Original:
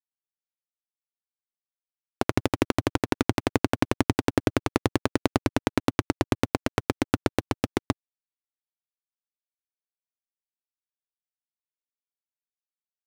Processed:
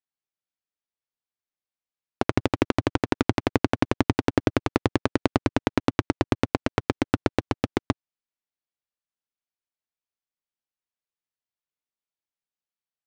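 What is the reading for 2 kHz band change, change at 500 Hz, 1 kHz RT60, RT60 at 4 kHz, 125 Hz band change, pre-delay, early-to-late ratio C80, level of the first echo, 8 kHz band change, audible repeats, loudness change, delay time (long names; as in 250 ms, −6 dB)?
+1.0 dB, +1.5 dB, no reverb audible, no reverb audible, +1.5 dB, no reverb audible, no reverb audible, no echo audible, −5.0 dB, no echo audible, +1.0 dB, no echo audible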